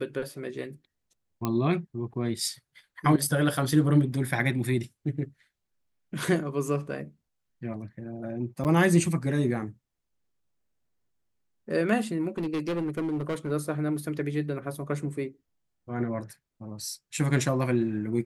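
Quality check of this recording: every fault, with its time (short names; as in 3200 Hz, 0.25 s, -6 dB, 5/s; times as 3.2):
1.45 pop -14 dBFS
8.64–8.65 gap 8.7 ms
12.37–13.52 clipped -25.5 dBFS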